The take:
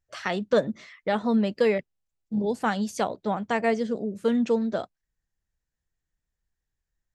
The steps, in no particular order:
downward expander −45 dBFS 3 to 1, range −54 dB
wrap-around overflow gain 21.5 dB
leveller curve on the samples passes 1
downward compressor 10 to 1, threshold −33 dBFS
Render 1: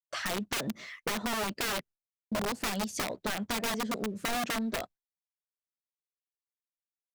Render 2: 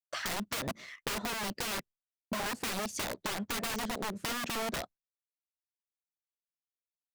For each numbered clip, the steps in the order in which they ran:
wrap-around overflow, then downward compressor, then leveller curve on the samples, then downward expander
leveller curve on the samples, then wrap-around overflow, then downward compressor, then downward expander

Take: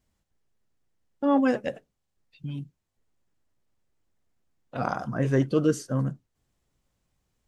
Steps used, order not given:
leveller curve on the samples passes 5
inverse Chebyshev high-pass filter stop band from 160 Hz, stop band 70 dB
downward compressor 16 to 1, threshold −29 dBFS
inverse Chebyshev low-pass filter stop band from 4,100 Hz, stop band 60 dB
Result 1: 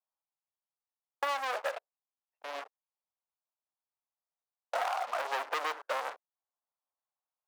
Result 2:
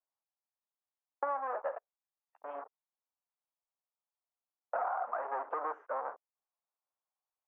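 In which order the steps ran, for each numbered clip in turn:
inverse Chebyshev low-pass filter, then leveller curve on the samples, then inverse Chebyshev high-pass filter, then downward compressor
leveller curve on the samples, then inverse Chebyshev high-pass filter, then downward compressor, then inverse Chebyshev low-pass filter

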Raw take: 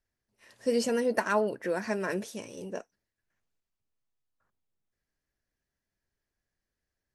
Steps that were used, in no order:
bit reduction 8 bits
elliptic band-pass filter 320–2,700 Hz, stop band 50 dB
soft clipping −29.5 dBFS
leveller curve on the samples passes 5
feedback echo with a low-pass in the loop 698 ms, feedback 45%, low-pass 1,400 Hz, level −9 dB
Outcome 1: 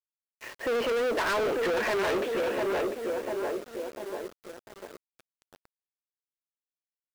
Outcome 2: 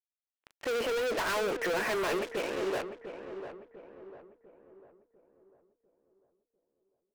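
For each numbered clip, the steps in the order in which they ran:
feedback echo with a low-pass in the loop, then soft clipping, then elliptic band-pass filter, then leveller curve on the samples, then bit reduction
bit reduction, then elliptic band-pass filter, then leveller curve on the samples, then soft clipping, then feedback echo with a low-pass in the loop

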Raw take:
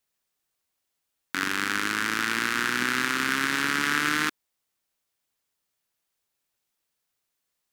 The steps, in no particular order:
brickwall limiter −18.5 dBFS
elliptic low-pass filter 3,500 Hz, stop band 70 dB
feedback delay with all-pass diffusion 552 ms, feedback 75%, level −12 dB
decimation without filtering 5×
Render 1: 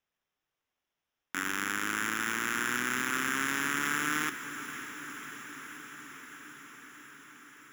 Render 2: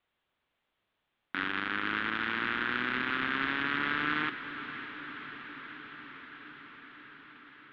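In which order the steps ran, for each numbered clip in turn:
elliptic low-pass filter, then brickwall limiter, then decimation without filtering, then feedback delay with all-pass diffusion
decimation without filtering, then elliptic low-pass filter, then brickwall limiter, then feedback delay with all-pass diffusion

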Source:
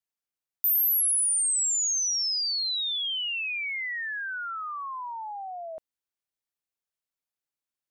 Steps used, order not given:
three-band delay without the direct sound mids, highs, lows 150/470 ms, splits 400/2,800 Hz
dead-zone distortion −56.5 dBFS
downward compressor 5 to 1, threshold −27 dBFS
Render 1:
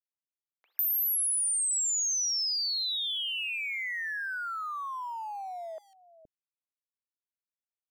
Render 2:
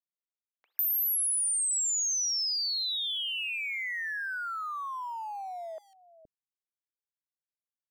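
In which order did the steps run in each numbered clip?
dead-zone distortion, then three-band delay without the direct sound, then downward compressor
dead-zone distortion, then downward compressor, then three-band delay without the direct sound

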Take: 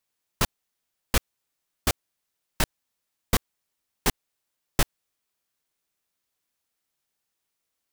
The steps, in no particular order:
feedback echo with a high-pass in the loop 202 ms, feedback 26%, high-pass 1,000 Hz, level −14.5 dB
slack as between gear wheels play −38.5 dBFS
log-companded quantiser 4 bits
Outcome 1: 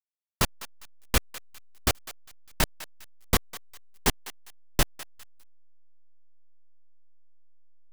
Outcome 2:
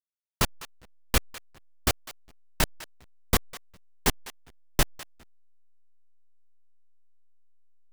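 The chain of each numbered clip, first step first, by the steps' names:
slack as between gear wheels, then feedback echo with a high-pass in the loop, then log-companded quantiser
feedback echo with a high-pass in the loop, then log-companded quantiser, then slack as between gear wheels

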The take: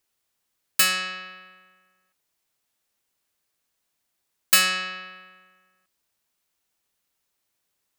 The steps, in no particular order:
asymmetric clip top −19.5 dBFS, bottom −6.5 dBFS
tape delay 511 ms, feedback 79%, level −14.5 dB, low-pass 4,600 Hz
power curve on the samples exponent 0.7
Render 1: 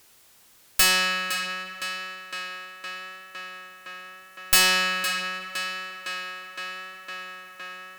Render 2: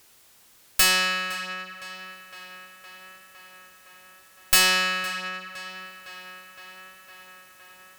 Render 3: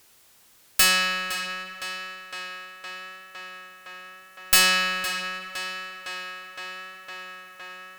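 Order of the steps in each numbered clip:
tape delay, then power curve on the samples, then asymmetric clip
power curve on the samples, then asymmetric clip, then tape delay
asymmetric clip, then tape delay, then power curve on the samples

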